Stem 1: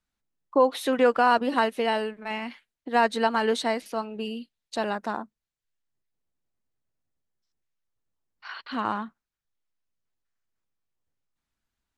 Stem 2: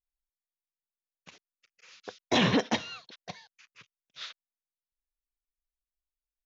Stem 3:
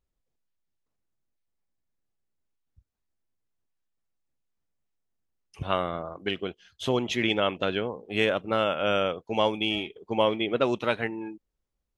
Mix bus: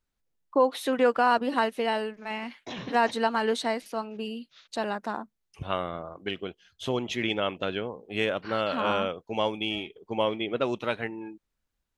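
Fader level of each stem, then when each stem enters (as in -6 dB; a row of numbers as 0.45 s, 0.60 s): -2.0 dB, -14.0 dB, -3.0 dB; 0.00 s, 0.35 s, 0.00 s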